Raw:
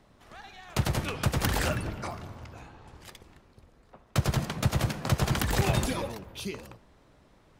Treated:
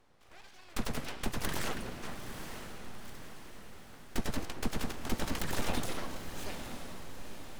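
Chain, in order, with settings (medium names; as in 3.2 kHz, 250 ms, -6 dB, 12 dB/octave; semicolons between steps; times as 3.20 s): full-wave rectifier; echo that smears into a reverb 925 ms, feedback 52%, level -8.5 dB; trim -5 dB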